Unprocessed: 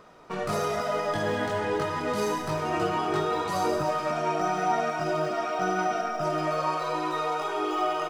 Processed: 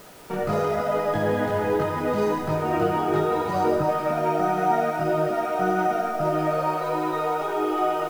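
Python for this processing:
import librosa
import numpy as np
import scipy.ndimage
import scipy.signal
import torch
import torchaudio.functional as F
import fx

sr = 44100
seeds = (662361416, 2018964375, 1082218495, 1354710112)

p1 = fx.high_shelf(x, sr, hz=7000.0, db=-9.0)
p2 = fx.quant_dither(p1, sr, seeds[0], bits=6, dither='triangular')
p3 = p1 + F.gain(torch.from_numpy(p2), -7.0).numpy()
p4 = fx.high_shelf(p3, sr, hz=2200.0, db=-11.5)
p5 = fx.notch(p4, sr, hz=1100.0, q=7.1)
y = F.gain(torch.from_numpy(p5), 2.5).numpy()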